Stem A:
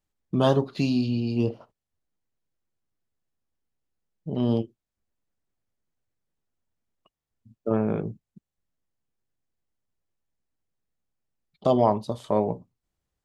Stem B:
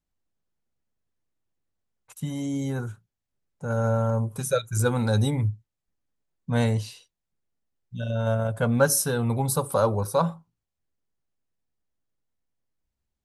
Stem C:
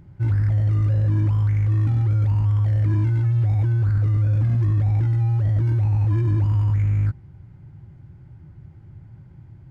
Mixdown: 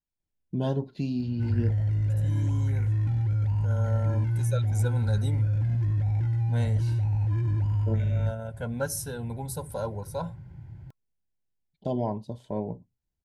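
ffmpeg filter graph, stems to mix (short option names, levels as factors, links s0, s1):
-filter_complex "[0:a]lowshelf=f=310:g=12,adelay=200,volume=0.224[s0];[1:a]volume=0.316,asplit=2[s1][s2];[2:a]equalizer=f=300:t=o:w=0.99:g=-5,acompressor=threshold=0.0141:ratio=1.5,adelay=1200,volume=1.12[s3];[s2]apad=whole_len=592708[s4];[s0][s4]sidechaincompress=threshold=0.00355:ratio=8:attack=16:release=512[s5];[s5][s1][s3]amix=inputs=3:normalize=0,asuperstop=centerf=1200:order=20:qfactor=5"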